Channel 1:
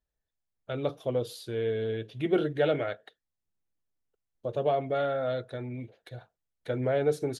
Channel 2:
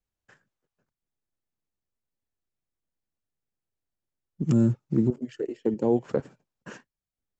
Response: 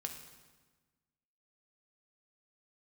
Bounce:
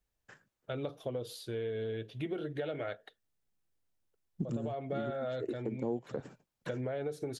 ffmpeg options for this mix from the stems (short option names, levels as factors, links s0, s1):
-filter_complex "[0:a]acompressor=threshold=0.0398:ratio=6,volume=0.75,asplit=2[s0][s1];[1:a]volume=1.19[s2];[s1]apad=whole_len=325905[s3];[s2][s3]sidechaincompress=threshold=0.00398:ratio=8:attack=30:release=109[s4];[s0][s4]amix=inputs=2:normalize=0,acompressor=threshold=0.0251:ratio=6"